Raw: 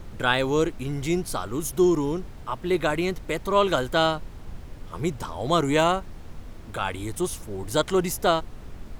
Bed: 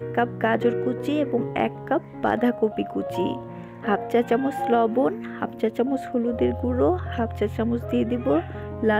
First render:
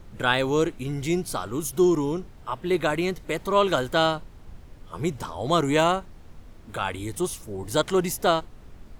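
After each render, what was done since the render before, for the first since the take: noise print and reduce 6 dB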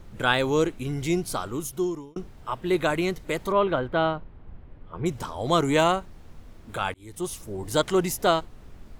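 1.43–2.16 s: fade out; 3.52–5.06 s: distance through air 450 m; 6.94–7.41 s: fade in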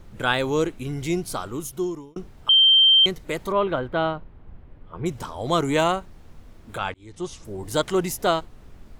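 2.49–3.06 s: bleep 3.14 kHz -11.5 dBFS; 6.78–7.45 s: low-pass 6.9 kHz 24 dB/octave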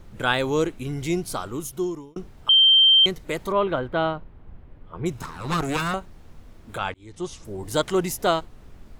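5.13–5.94 s: comb filter that takes the minimum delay 0.77 ms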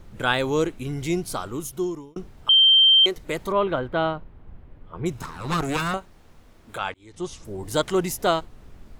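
2.52–3.16 s: resonant low shelf 240 Hz -11 dB, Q 1.5; 5.97–7.14 s: bass shelf 270 Hz -7.5 dB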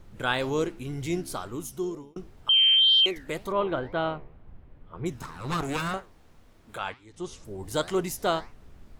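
flange 2 Hz, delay 6.7 ms, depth 8.9 ms, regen +85%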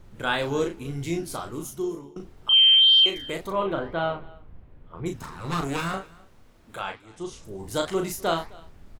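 doubling 36 ms -5 dB; delay 260 ms -23.5 dB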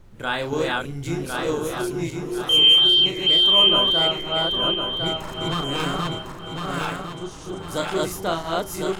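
backward echo that repeats 527 ms, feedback 61%, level 0 dB; feedback echo behind a low-pass 835 ms, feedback 68%, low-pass 1.7 kHz, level -16.5 dB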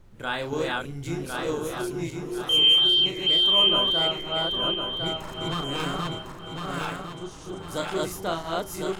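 trim -4 dB

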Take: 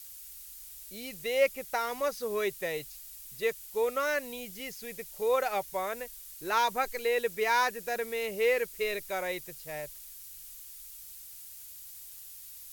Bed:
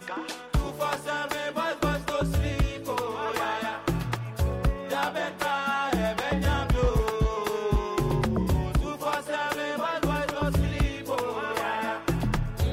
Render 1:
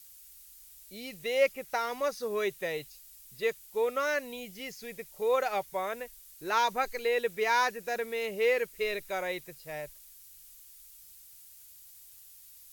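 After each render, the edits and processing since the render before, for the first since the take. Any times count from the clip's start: noise print and reduce 6 dB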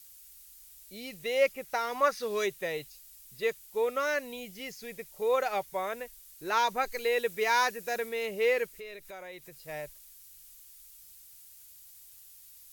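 1.94–2.45 s: peaking EQ 840 Hz -> 6.5 kHz +11 dB 1.2 oct; 6.92–8.09 s: treble shelf 4.2 kHz +4.5 dB; 8.70–9.68 s: compression 2.5:1, threshold -46 dBFS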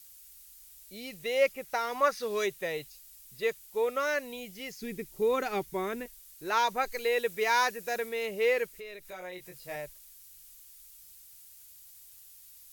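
4.81–6.06 s: resonant low shelf 440 Hz +8 dB, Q 3; 9.09–9.76 s: doubling 22 ms -3 dB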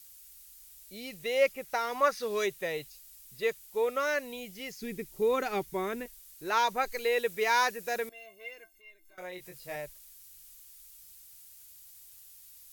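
8.09–9.18 s: inharmonic resonator 320 Hz, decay 0.21 s, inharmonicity 0.03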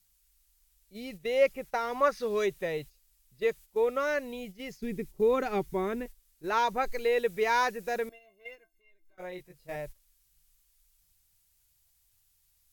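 gate -45 dBFS, range -10 dB; tilt EQ -2 dB/octave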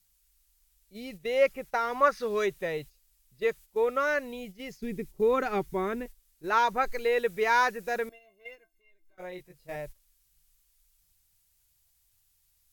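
dynamic bell 1.4 kHz, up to +5 dB, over -41 dBFS, Q 1.4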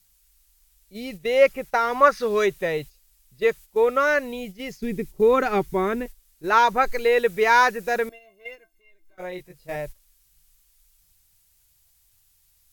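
trim +7 dB

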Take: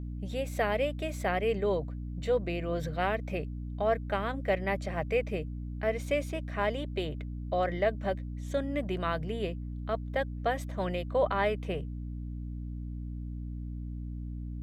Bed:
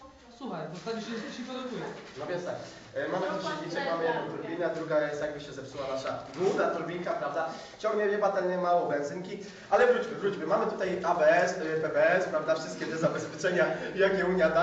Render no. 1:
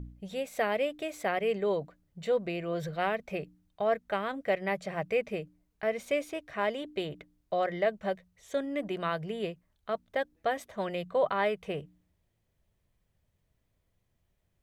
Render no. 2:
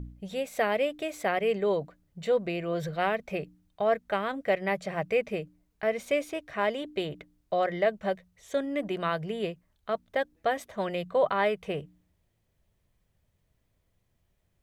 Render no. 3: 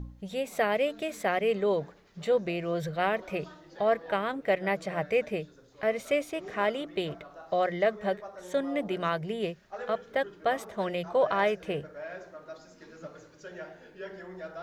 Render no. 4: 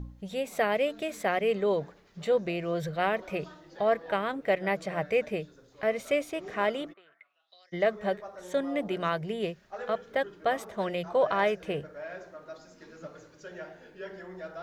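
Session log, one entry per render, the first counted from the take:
de-hum 60 Hz, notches 5
trim +2.5 dB
add bed -16.5 dB
6.92–7.72 s: band-pass filter 1.1 kHz -> 5.9 kHz, Q 10

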